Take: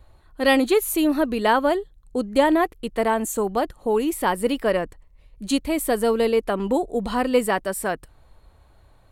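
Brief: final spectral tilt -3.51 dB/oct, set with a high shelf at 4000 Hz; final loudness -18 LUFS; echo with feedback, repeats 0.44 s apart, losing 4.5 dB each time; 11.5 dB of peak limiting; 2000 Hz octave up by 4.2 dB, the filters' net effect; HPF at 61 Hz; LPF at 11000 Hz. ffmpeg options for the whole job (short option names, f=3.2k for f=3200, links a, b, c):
-af "highpass=61,lowpass=11k,equalizer=f=2k:t=o:g=6,highshelf=f=4k:g=-5,alimiter=limit=-16dB:level=0:latency=1,aecho=1:1:440|880|1320|1760|2200|2640|3080|3520|3960:0.596|0.357|0.214|0.129|0.0772|0.0463|0.0278|0.0167|0.01,volume=6.5dB"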